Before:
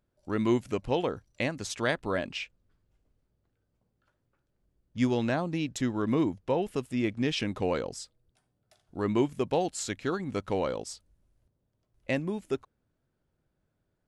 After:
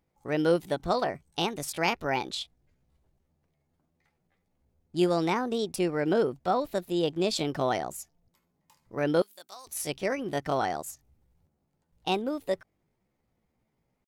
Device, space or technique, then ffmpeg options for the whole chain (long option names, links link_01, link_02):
chipmunk voice: -filter_complex "[0:a]asettb=1/sr,asplit=3[link_01][link_02][link_03];[link_01]atrim=end=9.234[link_04];[link_02]atrim=start=9.23:end=9.69,asetpts=PTS-STARTPTS,afade=type=in:duration=0.004:curve=qsin,afade=type=out:start_time=0.456:duration=0.004:curve=qsin,aderivative[link_05];[link_03]atrim=start=9.686[link_06];[link_04][link_05]acrossfade=duration=0.004:curve1=hsin:curve2=qsin[link_07];[link_07][link_06]acrossfade=duration=0.004:curve1=qsin:curve2=hsin,asetrate=62367,aresample=44100,atempo=0.707107,volume=1.5dB"